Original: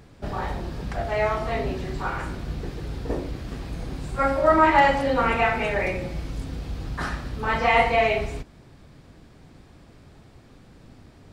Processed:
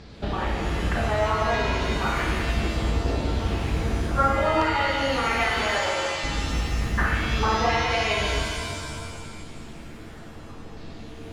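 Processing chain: 5.62–6.24 s: high-pass 570 Hz 12 dB/octave; compression 12:1, threshold -29 dBFS, peak gain reduction 17 dB; LFO low-pass saw down 0.65 Hz 930–4900 Hz; pitch-shifted reverb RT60 1.9 s, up +7 st, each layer -2 dB, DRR 3 dB; trim +4 dB

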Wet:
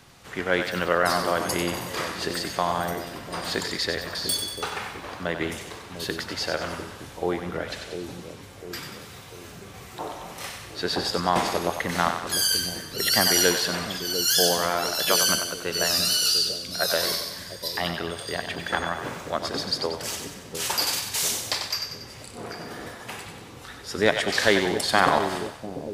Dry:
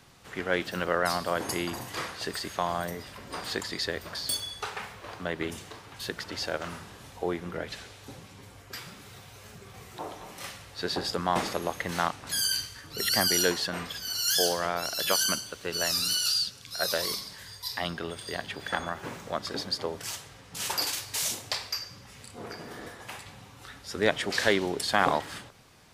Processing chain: two-band feedback delay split 520 Hz, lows 698 ms, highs 94 ms, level -7 dB; trim +4 dB

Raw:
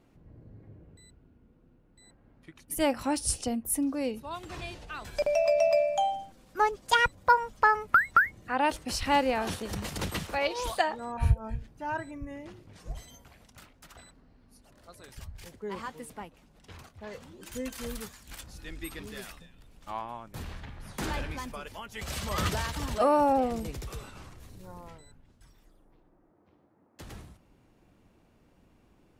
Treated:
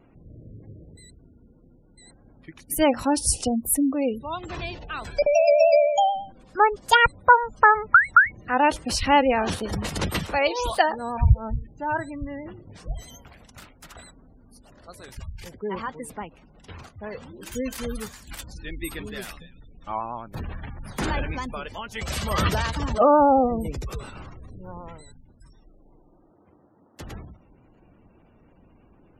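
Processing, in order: spectral gate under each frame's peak -25 dB strong; vibrato 9.2 Hz 37 cents; trim +7 dB

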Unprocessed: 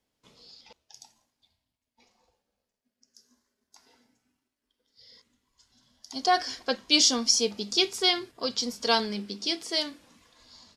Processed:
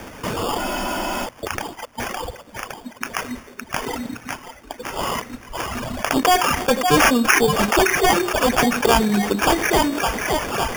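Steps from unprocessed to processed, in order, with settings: on a send: two-band feedback delay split 580 Hz, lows 91 ms, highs 562 ms, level -13.5 dB; on the sum: sample-and-hold 11×; reverb removal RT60 1.1 s; spectral freeze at 0.60 s, 0.65 s; level flattener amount 70%; trim +4.5 dB

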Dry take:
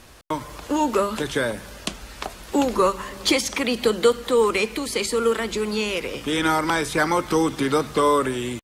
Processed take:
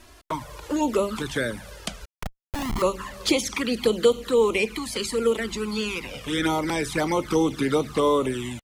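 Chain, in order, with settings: 2.05–2.82 s: Schmitt trigger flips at -24.5 dBFS; touch-sensitive flanger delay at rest 3.2 ms, full sweep at -16.5 dBFS

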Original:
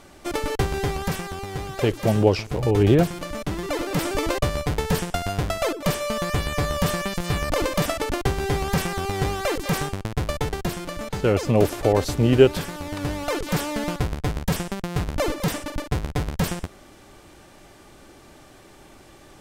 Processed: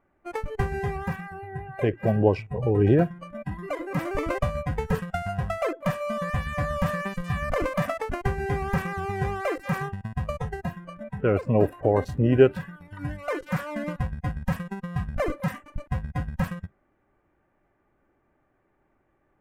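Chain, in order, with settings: local Wiener filter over 9 samples; resonant high shelf 2.7 kHz -10 dB, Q 1.5; spectral noise reduction 18 dB; trim -2.5 dB

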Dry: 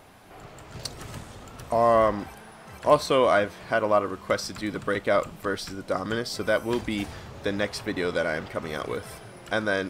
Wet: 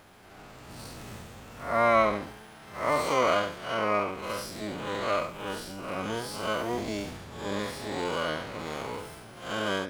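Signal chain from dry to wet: spectral blur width 156 ms; harmony voices +12 st -3 dB; trim -3 dB

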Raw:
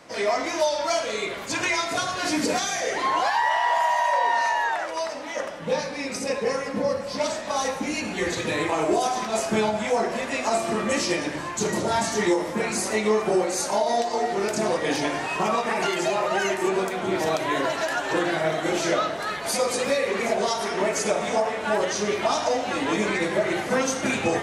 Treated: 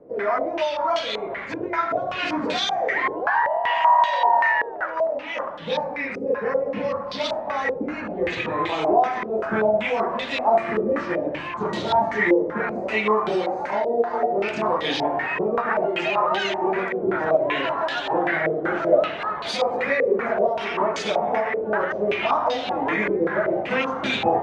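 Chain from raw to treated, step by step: step-sequenced low-pass 5.2 Hz 450–3600 Hz; trim -2 dB

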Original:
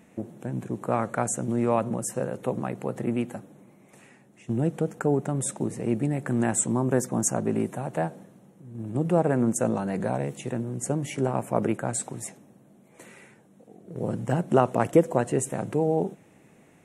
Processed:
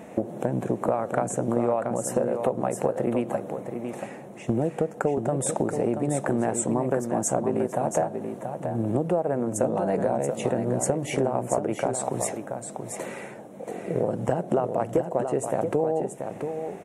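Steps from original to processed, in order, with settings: peaking EQ 620 Hz +12 dB 1.6 oct; compression 10:1, threshold -29 dBFS, peak gain reduction 24.5 dB; on a send: delay 681 ms -7 dB; on the sum: trim +7.5 dB

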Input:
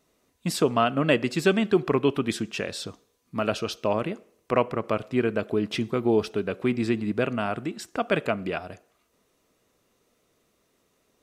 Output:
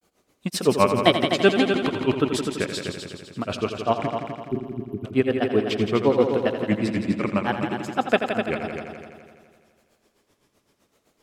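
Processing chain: granulator 120 ms, grains 7.8 per s, spray 36 ms, pitch spread up and down by 3 st; spectral selection erased 4.07–5.04 s, 430–11000 Hz; multi-head delay 84 ms, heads all three, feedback 52%, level -10 dB; trim +5.5 dB

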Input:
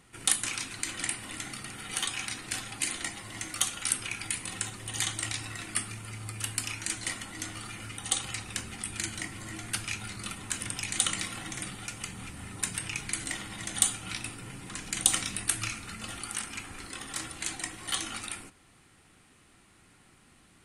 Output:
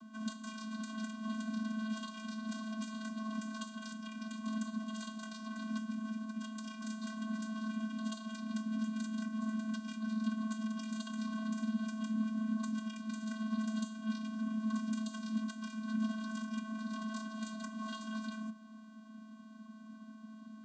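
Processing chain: low-pass 3.1 kHz 6 dB/octave; compression 6:1, threshold -43 dBFS, peak gain reduction 17 dB; vocoder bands 16, square 218 Hz; static phaser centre 570 Hz, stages 6; trim +14.5 dB

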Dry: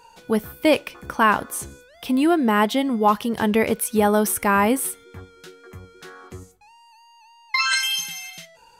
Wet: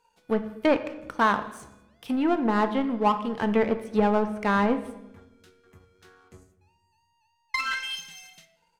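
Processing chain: low-pass that closes with the level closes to 1.7 kHz, closed at -15 dBFS; power-law waveshaper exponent 1.4; speakerphone echo 200 ms, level -25 dB; on a send at -9 dB: reverberation RT60 0.95 s, pre-delay 4 ms; on the sum: trim -2 dB

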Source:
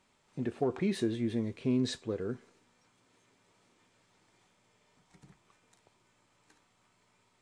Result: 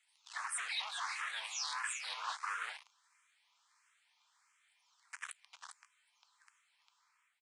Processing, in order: delay that grows with frequency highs early, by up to 423 ms; waveshaping leveller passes 5; steep high-pass 990 Hz 36 dB/octave; delay 401 ms -5 dB; in parallel at +1 dB: peak limiter -24 dBFS, peak gain reduction 6.5 dB; on the sum: resampled via 22.05 kHz; reverse; compression 16:1, threshold -38 dBFS, peak gain reduction 17 dB; reverse; barber-pole phaser +1.5 Hz; trim +4 dB

